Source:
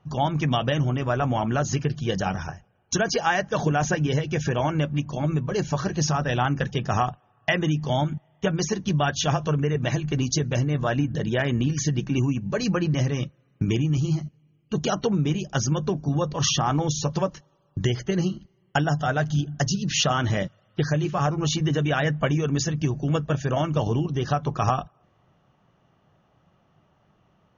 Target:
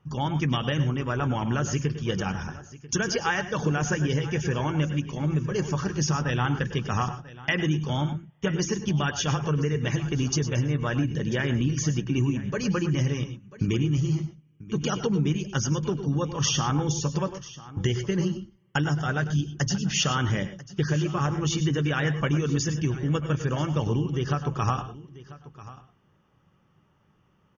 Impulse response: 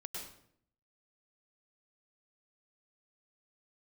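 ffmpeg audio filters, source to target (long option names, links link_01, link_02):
-filter_complex "[0:a]equalizer=frequency=680:width=3.7:gain=-12.5,bandreject=frequency=4000:width=5.1,aecho=1:1:991:0.126,asplit=2[link_01][link_02];[1:a]atrim=start_sample=2205,afade=type=out:start_time=0.17:duration=0.01,atrim=end_sample=7938[link_03];[link_02][link_03]afir=irnorm=-1:irlink=0,volume=-1.5dB[link_04];[link_01][link_04]amix=inputs=2:normalize=0,volume=-4.5dB"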